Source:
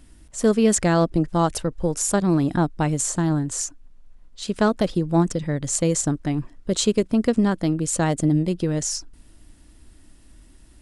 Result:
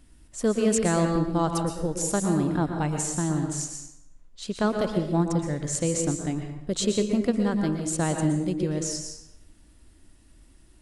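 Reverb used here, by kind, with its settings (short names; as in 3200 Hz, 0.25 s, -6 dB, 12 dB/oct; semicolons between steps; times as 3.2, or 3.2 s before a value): plate-style reverb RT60 0.79 s, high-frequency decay 0.75×, pre-delay 0.105 s, DRR 4 dB; gain -5.5 dB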